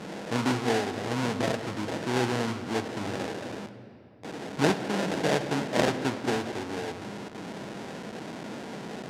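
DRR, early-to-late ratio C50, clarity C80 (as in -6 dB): 9.5 dB, 11.0 dB, 12.0 dB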